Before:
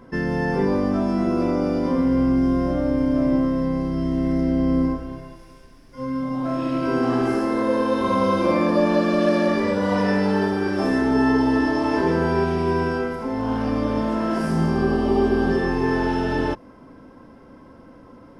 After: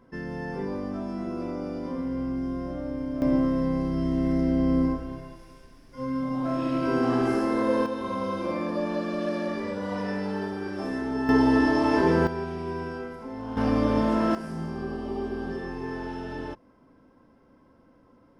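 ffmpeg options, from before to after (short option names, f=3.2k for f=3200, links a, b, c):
-af "asetnsamples=n=441:p=0,asendcmd='3.22 volume volume -3dB;7.86 volume volume -10dB;11.29 volume volume -1dB;12.27 volume volume -11dB;13.57 volume volume -0.5dB;14.35 volume volume -12.5dB',volume=-11dB"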